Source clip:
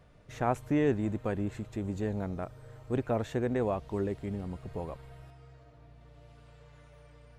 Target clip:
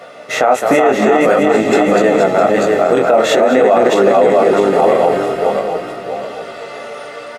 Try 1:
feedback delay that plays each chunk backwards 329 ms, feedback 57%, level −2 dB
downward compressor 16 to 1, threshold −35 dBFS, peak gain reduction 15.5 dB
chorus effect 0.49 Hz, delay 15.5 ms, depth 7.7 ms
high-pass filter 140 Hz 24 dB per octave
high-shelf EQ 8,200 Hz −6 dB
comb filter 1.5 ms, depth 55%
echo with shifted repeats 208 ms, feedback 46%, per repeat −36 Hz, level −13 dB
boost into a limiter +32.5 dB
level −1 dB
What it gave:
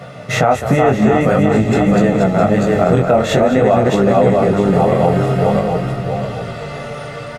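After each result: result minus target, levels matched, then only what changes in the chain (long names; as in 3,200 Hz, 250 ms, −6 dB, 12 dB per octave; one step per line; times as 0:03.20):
125 Hz band +15.5 dB; downward compressor: peak gain reduction +7.5 dB
change: high-pass filter 290 Hz 24 dB per octave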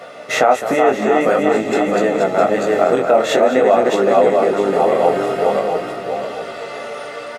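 downward compressor: peak gain reduction +7.5 dB
change: downward compressor 16 to 1, threshold −27 dBFS, peak gain reduction 8 dB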